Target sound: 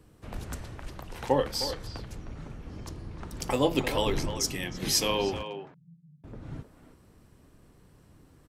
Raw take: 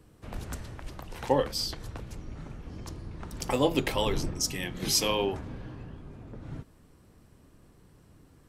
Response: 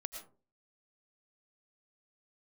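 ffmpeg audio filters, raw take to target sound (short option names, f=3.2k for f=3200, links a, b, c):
-filter_complex "[0:a]asettb=1/sr,asplit=3[a][b][c];[a]atrim=end=5.434[d];[b]atrim=start=5.43:end=6.24,asetpts=PTS-STARTPTS,afade=t=in:d=0.004:c=qsin,afade=t=out:st=0.806:d=0.004:c=qsin,asuperpass=centerf=160:order=4:qfactor=7.1[e];[c]atrim=start=6.236[f];[d][e]acrossfade=d=0.004:c1=hsin:c2=qsin[g];[g][f]acrossfade=d=0.004:c1=qsin:c2=hsin,asplit=2[h][i];[i]adelay=310,highpass=300,lowpass=3.4k,asoftclip=type=hard:threshold=-20dB,volume=-9dB[j];[h][j]amix=inputs=2:normalize=0"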